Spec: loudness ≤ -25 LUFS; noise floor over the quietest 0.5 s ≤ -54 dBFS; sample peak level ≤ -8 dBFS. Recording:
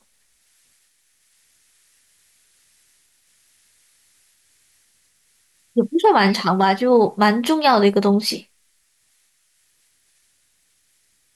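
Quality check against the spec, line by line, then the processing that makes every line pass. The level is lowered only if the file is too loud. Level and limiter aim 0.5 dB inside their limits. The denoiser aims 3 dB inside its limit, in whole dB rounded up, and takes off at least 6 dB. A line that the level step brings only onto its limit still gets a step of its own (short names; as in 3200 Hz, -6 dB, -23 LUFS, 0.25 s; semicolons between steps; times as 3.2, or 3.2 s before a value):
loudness -17.0 LUFS: fail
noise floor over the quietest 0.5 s -63 dBFS: OK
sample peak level -5.0 dBFS: fail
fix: gain -8.5 dB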